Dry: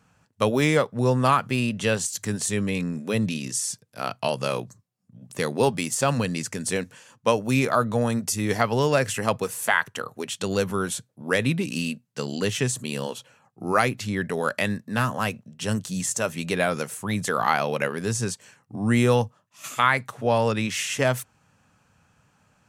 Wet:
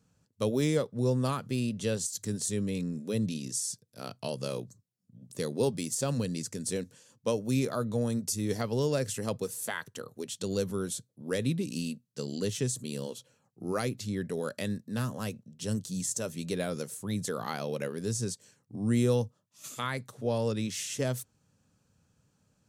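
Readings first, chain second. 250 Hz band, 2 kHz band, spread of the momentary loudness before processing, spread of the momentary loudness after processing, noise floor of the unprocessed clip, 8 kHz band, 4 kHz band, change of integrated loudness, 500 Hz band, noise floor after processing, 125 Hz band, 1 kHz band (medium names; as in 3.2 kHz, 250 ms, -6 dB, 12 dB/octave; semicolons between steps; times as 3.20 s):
-5.5 dB, -15.5 dB, 11 LU, 10 LU, -66 dBFS, -5.5 dB, -8.5 dB, -7.5 dB, -7.0 dB, -73 dBFS, -5.5 dB, -15.5 dB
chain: high-order bell 1.4 kHz -10 dB 2.4 oct; trim -5.5 dB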